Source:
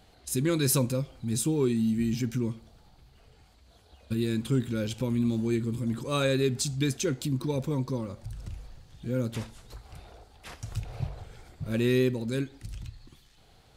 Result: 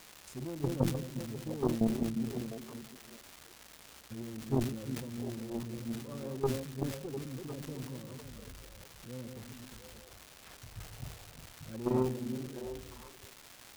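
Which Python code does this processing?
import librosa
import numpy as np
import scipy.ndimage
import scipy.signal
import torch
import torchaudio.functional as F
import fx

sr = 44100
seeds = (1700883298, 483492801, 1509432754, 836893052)

p1 = fx.reverse_delay(x, sr, ms=201, wet_db=-5.5)
p2 = fx.env_lowpass_down(p1, sr, base_hz=540.0, full_db=-24.0)
p3 = fx.level_steps(p2, sr, step_db=24)
p4 = p2 + F.gain(torch.from_numpy(p3), -0.5).numpy()
p5 = fx.cheby_harmonics(p4, sr, harmonics=(2, 3, 4), levels_db=(-8, -11, -24), full_scale_db=-7.0)
p6 = fx.dmg_crackle(p5, sr, seeds[0], per_s=560.0, level_db=-39.0)
p7 = p6 + fx.echo_stepped(p6, sr, ms=351, hz=200.0, octaves=1.4, feedback_pct=70, wet_db=-5, dry=0)
y = fx.sustainer(p7, sr, db_per_s=83.0)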